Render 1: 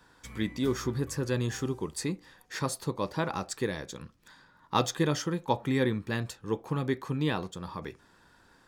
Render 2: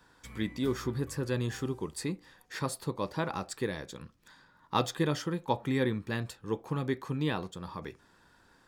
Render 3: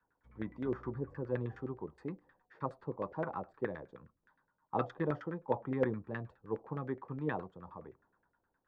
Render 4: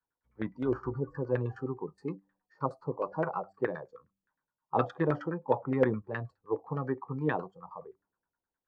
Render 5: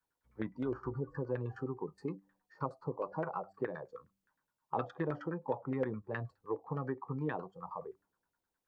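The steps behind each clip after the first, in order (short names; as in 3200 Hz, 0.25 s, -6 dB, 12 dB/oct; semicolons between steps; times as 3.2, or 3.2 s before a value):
dynamic EQ 6200 Hz, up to -6 dB, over -57 dBFS, Q 3.6; gain -2 dB
LFO low-pass saw down 9.6 Hz 460–1800 Hz; three-band expander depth 40%; gain -7.5 dB
de-hum 97.25 Hz, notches 3; spectral noise reduction 18 dB; gain +6 dB
compressor 2.5:1, threshold -40 dBFS, peak gain reduction 14 dB; gain +3 dB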